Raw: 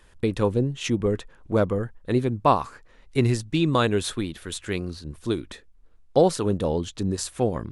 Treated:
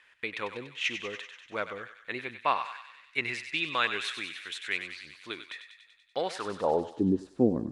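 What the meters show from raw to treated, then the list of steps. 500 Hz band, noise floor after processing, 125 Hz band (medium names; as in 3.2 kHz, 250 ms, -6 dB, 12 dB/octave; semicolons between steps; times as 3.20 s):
-9.5 dB, -61 dBFS, -16.0 dB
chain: band-pass sweep 2.2 kHz -> 270 Hz, 6.30–7.09 s; thinning echo 96 ms, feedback 72%, high-pass 1.2 kHz, level -8 dB; trim +6 dB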